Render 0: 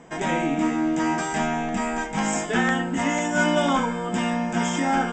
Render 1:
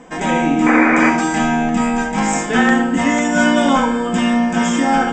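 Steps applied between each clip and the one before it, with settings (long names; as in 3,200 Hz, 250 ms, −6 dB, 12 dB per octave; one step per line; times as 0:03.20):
sound drawn into the spectrogram noise, 0:00.66–0:01.10, 230–2,500 Hz −22 dBFS
rectangular room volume 3,100 cubic metres, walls furnished, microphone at 2 metres
level +5 dB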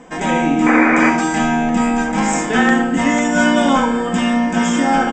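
slap from a distant wall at 240 metres, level −14 dB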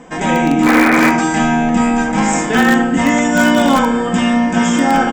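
parametric band 120 Hz +8.5 dB 0.46 octaves
in parallel at −11 dB: wrap-around overflow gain 5 dB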